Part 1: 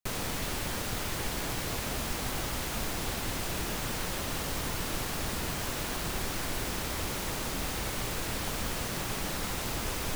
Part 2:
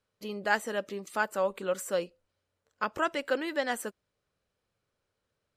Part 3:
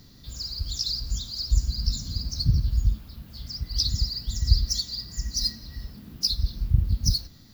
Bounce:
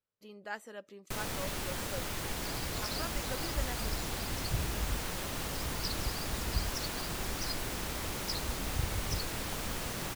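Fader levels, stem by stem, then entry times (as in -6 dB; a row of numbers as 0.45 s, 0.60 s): -3.5 dB, -13.5 dB, -14.0 dB; 1.05 s, 0.00 s, 2.05 s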